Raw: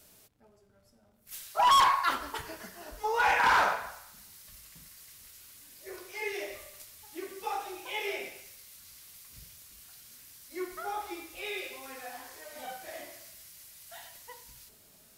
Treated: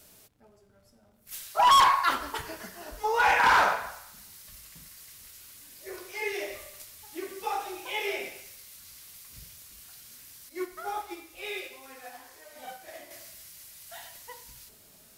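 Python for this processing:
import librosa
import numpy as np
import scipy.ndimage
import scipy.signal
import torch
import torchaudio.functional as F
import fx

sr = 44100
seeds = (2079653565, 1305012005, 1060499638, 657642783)

y = fx.upward_expand(x, sr, threshold_db=-45.0, expansion=1.5, at=(10.49, 13.11))
y = y * 10.0 ** (3.0 / 20.0)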